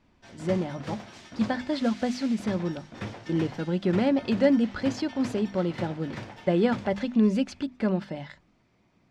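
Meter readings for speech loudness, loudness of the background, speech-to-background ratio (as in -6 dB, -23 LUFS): -27.5 LUFS, -41.5 LUFS, 14.0 dB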